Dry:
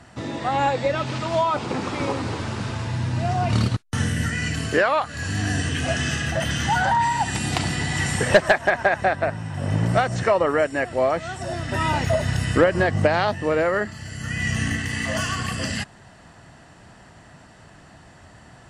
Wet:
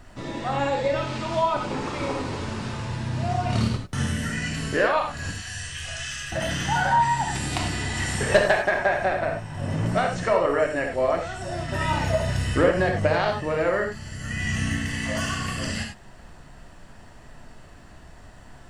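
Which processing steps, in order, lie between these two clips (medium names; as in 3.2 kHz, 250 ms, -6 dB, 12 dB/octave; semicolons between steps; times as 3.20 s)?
5.31–6.32 s: amplifier tone stack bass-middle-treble 10-0-10; added noise brown -45 dBFS; gated-style reverb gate 120 ms flat, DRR 1.5 dB; trim -4.5 dB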